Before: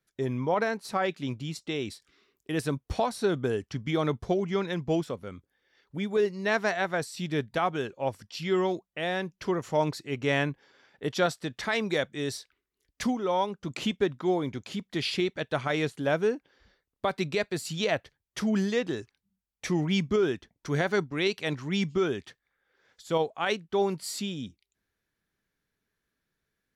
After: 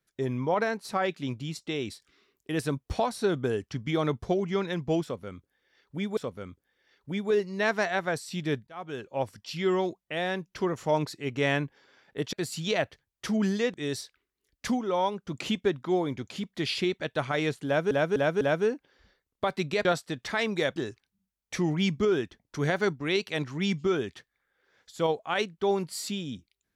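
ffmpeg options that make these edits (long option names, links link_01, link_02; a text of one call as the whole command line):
ffmpeg -i in.wav -filter_complex "[0:a]asplit=10[link_01][link_02][link_03][link_04][link_05][link_06][link_07][link_08][link_09][link_10];[link_01]atrim=end=6.172[link_11];[link_02]atrim=start=5.028:end=7.53,asetpts=PTS-STARTPTS,afade=type=out:start_time=2.498:duration=0.004:curve=hsin[link_12];[link_03]atrim=start=7.53:end=11.192,asetpts=PTS-STARTPTS,afade=type=in:duration=0.5[link_13];[link_04]atrim=start=17.458:end=18.872[link_14];[link_05]atrim=start=12.098:end=16.272[link_15];[link_06]atrim=start=16.018:end=16.272[link_16];[link_07]atrim=start=16.018:end=16.272[link_17];[link_08]atrim=start=16.018:end=17.462[link_18];[link_09]atrim=start=11.188:end=12.102[link_19];[link_10]atrim=start=18.868[link_20];[link_12][link_13]concat=n=2:v=0:a=1[link_21];[link_11][link_21]acrossfade=duration=0.004:curve1=hsin:curve2=hsin[link_22];[link_22][link_14]acrossfade=duration=0.004:curve1=hsin:curve2=hsin[link_23];[link_23][link_15]acrossfade=duration=0.004:curve1=hsin:curve2=hsin[link_24];[link_24][link_16]acrossfade=duration=0.004:curve1=hsin:curve2=hsin[link_25];[link_25][link_17]acrossfade=duration=0.004:curve1=hsin:curve2=hsin[link_26];[link_26][link_18]acrossfade=duration=0.004:curve1=hsin:curve2=hsin[link_27];[link_27][link_19]acrossfade=duration=0.004:curve1=hsin:curve2=hsin[link_28];[link_28][link_20]acrossfade=duration=0.004:curve1=hsin:curve2=hsin" out.wav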